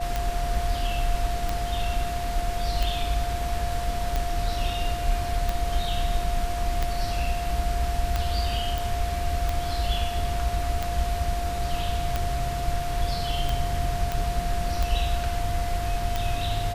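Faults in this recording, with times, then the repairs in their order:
scratch tick 45 rpm −12 dBFS
whistle 700 Hz −30 dBFS
0:08.78: click
0:14.12: click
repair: click removal
notch filter 700 Hz, Q 30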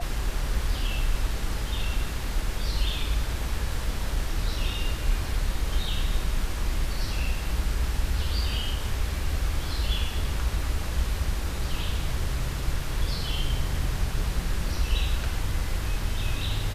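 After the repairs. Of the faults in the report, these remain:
none of them is left

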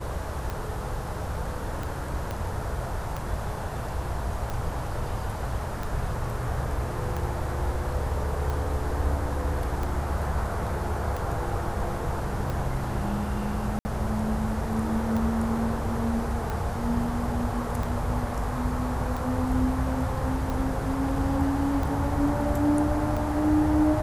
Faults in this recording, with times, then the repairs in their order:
scratch tick 45 rpm
0:02.31: click −18 dBFS
0:13.79–0:13.85: drop-out 60 ms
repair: click removal
repair the gap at 0:13.79, 60 ms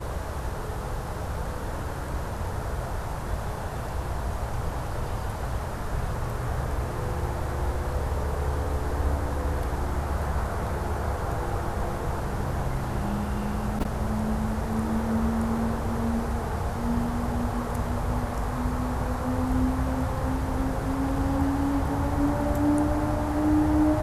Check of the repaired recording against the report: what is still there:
0:02.31: click

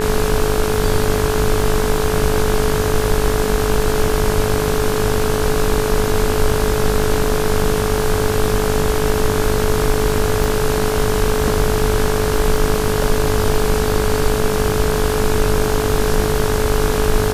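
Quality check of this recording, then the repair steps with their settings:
mains buzz 50 Hz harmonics 34 −22 dBFS
surface crackle 35 per second −25 dBFS
whistle 430 Hz −19 dBFS
0:10.44: click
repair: click removal
hum removal 50 Hz, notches 34
notch filter 430 Hz, Q 30

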